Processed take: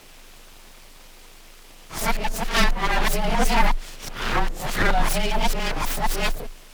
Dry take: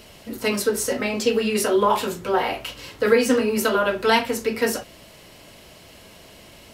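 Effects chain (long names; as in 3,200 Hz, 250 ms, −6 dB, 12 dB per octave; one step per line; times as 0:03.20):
played backwards from end to start
full-wave rectification
frequency shifter −23 Hz
level +1.5 dB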